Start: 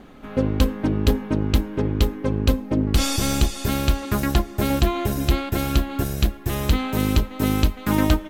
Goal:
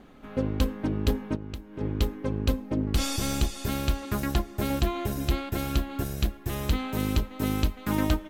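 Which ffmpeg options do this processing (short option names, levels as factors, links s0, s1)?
-filter_complex "[0:a]asplit=3[s0][s1][s2];[s0]afade=t=out:st=1.35:d=0.02[s3];[s1]acompressor=threshold=0.0447:ratio=8,afade=t=in:st=1.35:d=0.02,afade=t=out:st=1.8:d=0.02[s4];[s2]afade=t=in:st=1.8:d=0.02[s5];[s3][s4][s5]amix=inputs=3:normalize=0,volume=0.473"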